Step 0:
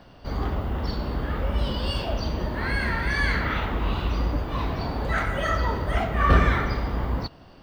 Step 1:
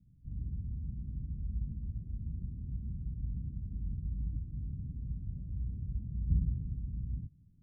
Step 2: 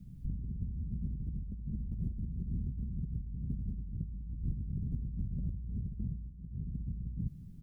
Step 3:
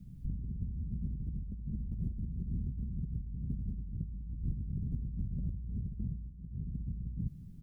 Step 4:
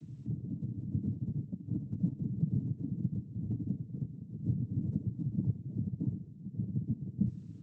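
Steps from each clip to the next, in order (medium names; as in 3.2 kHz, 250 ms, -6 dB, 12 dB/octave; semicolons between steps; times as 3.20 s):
inverse Chebyshev low-pass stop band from 950 Hz, stop band 80 dB; bass shelf 86 Hz -10.5 dB; trim -3.5 dB
comb 5 ms, depth 33%; compressor with a negative ratio -45 dBFS, ratio -1; trim +7 dB
no audible change
noise-vocoded speech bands 12; trim +7 dB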